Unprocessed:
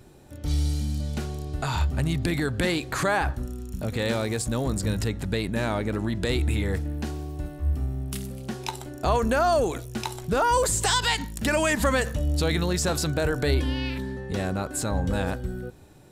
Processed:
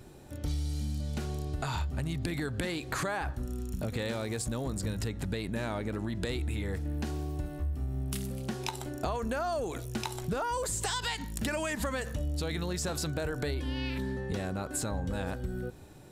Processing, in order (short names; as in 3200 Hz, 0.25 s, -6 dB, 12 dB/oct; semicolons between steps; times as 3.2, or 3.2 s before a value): compressor 6:1, threshold -30 dBFS, peak gain reduction 12 dB